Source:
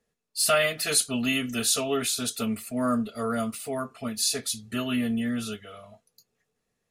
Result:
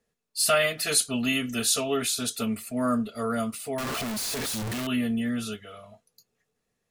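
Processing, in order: 3.78–4.87 infinite clipping

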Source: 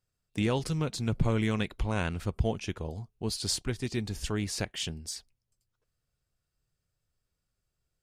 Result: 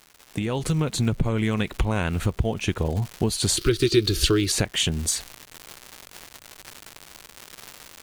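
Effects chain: bell 5100 Hz -12.5 dB 0.25 oct; crackle 280/s -44 dBFS; compressor 12:1, threshold -37 dBFS, peak gain reduction 17.5 dB; 3.57–4.52 EQ curve 160 Hz 0 dB, 230 Hz -10 dB, 340 Hz +12 dB, 840 Hz -15 dB, 1300 Hz +5 dB, 1900 Hz -1 dB, 4700 Hz +14 dB, 7000 Hz 0 dB, 13000 Hz +6 dB; AGC gain up to 10 dB; gain +8 dB

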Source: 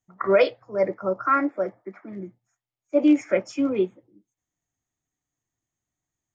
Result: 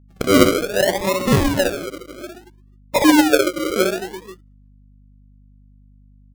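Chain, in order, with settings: 1.67–3.76 sine-wave speech; reverse bouncing-ball echo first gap 60 ms, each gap 1.25×, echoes 5; gate -48 dBFS, range -17 dB; decimation with a swept rate 39×, swing 60% 0.62 Hz; hum 50 Hz, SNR 29 dB; gain +4 dB

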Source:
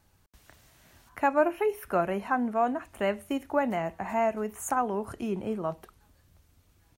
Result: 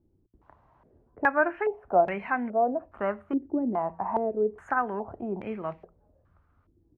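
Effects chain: de-hum 56.56 Hz, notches 3; stepped low-pass 2.4 Hz 340–2200 Hz; gain -3 dB

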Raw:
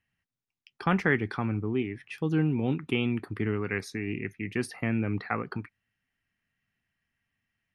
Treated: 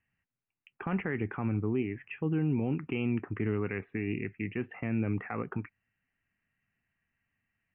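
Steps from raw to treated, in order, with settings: steep low-pass 2900 Hz 96 dB/oct; dynamic EQ 1600 Hz, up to -4 dB, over -42 dBFS, Q 1; limiter -21.5 dBFS, peak gain reduction 9.5 dB

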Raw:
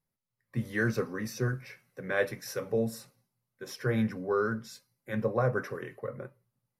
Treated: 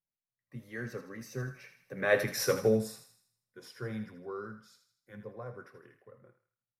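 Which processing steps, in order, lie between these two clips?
Doppler pass-by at 2.41, 12 m/s, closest 2.3 m; wow and flutter 15 cents; thinning echo 80 ms, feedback 48%, high-pass 780 Hz, level -9 dB; gain +7.5 dB

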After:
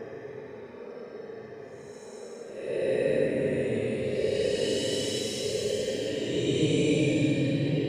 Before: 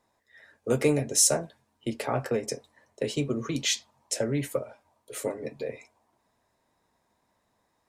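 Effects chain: spring tank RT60 1.8 s, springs 59 ms, chirp 55 ms, DRR 0 dB; Paulstretch 23×, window 0.05 s, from 2.89

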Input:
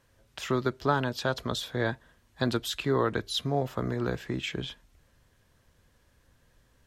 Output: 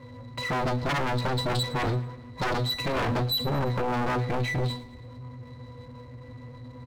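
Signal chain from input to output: octave resonator B, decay 0.22 s; power-law curve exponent 0.7; sine folder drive 16 dB, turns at -22 dBFS; on a send: feedback echo 0.112 s, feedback 55%, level -19.5 dB; on the sum: gain -1.5 dB

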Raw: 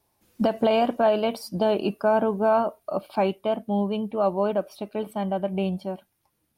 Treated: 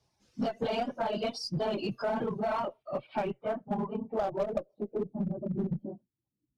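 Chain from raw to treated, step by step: phase scrambler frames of 50 ms; bell 130 Hz +11 dB 0.35 oct; reverb removal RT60 1.3 s; 1.65–2.83 transient shaper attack -2 dB, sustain +5 dB; low-pass sweep 5700 Hz -> 290 Hz, 2.11–5.33; added harmonics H 3 -31 dB, 4 -22 dB, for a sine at -4.5 dBFS; in parallel at -11 dB: wavefolder -23.5 dBFS; on the sum: compressor 6:1, threshold -22 dBFS, peak gain reduction 10.5 dB; gain -5.5 dB

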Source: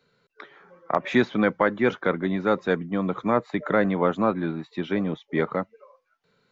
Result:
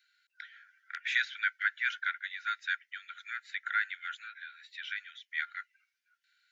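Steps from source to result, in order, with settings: Chebyshev high-pass 1400 Hz, order 10; 4.2–4.7 compressor 2:1, threshold -44 dBFS, peak gain reduction 4.5 dB

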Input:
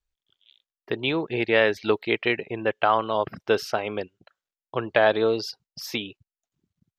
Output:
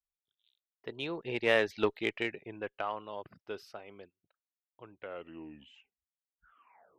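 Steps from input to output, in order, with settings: tape stop at the end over 2.22 s; Doppler pass-by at 1.71, 16 m/s, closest 8 m; added harmonics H 6 -33 dB, 7 -30 dB, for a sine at -6 dBFS; gain -6 dB

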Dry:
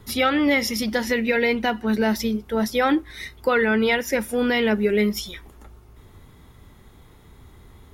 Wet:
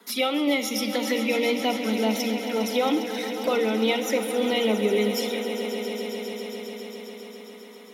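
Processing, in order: steep high-pass 190 Hz 96 dB/oct; low shelf 400 Hz -7.5 dB; in parallel at -2.5 dB: compressor 12:1, threshold -36 dBFS, peak gain reduction 19.5 dB; on the sum: envelope flanger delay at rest 4.6 ms, full sweep at -21.5 dBFS; on a send: swelling echo 0.135 s, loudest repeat 5, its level -13.5 dB; on the sum: Schroeder reverb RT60 0.59 s, combs from 28 ms, DRR 13 dB

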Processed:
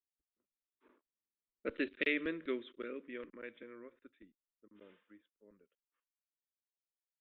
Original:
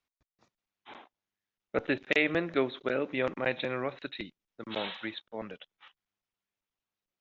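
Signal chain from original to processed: Doppler pass-by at 1.89, 22 m/s, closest 12 m; steep low-pass 3800 Hz; fixed phaser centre 320 Hz, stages 4; low-pass opened by the level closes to 980 Hz, open at -28.5 dBFS; gain -5 dB

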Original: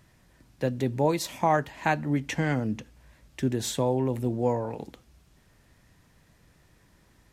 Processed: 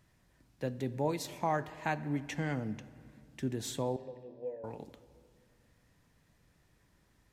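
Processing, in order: 3.96–4.64 vowel filter e; on a send: reverb RT60 2.4 s, pre-delay 7 ms, DRR 14.5 dB; on the sum: gain -8.5 dB

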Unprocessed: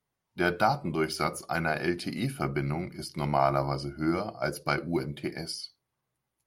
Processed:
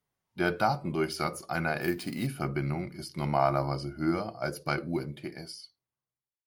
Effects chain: ending faded out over 1.70 s; 1.81–2.27 sample-rate reducer 14000 Hz, jitter 0%; harmonic-percussive split harmonic +3 dB; gain -3 dB

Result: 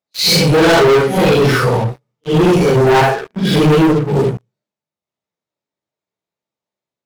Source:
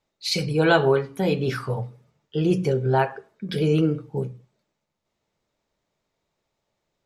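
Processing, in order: phase scrambler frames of 0.2 s; HPF 110 Hz 12 dB/oct; sample leveller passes 5

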